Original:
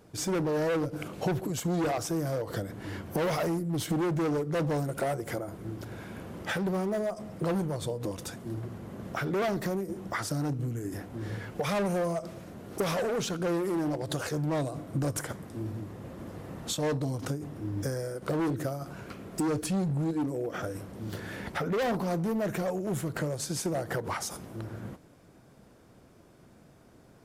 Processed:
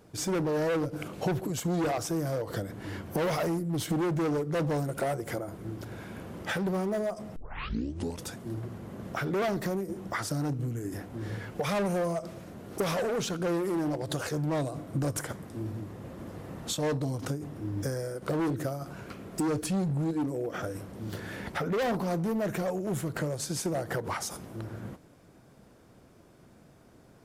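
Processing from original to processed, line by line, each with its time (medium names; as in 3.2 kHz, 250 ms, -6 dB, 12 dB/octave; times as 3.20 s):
7.36 s: tape start 0.87 s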